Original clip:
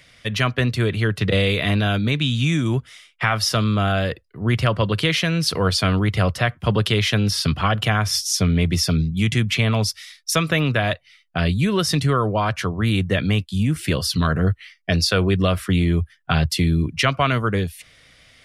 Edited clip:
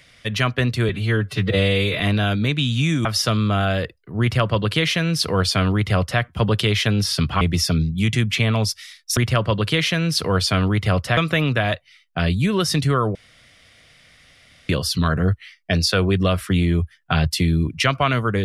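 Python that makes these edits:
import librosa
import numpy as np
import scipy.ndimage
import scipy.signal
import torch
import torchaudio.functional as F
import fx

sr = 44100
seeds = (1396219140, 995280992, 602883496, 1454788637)

y = fx.edit(x, sr, fx.stretch_span(start_s=0.89, length_s=0.74, factor=1.5),
    fx.cut(start_s=2.68, length_s=0.64),
    fx.duplicate(start_s=4.48, length_s=2.0, to_s=10.36),
    fx.cut(start_s=7.68, length_s=0.92),
    fx.room_tone_fill(start_s=12.34, length_s=1.54), tone=tone)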